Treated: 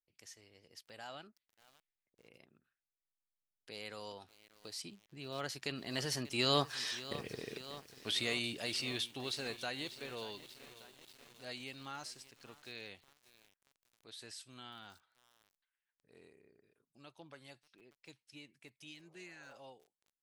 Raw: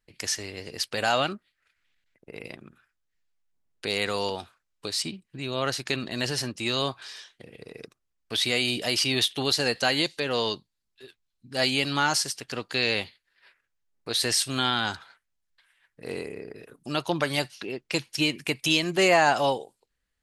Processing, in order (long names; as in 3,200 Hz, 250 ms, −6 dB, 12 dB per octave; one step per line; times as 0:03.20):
source passing by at 0:07.02, 14 m/s, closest 2.7 metres
healed spectral selection 0:18.88–0:19.55, 380–1,300 Hz both
feedback echo at a low word length 588 ms, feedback 80%, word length 9 bits, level −14.5 dB
level +5.5 dB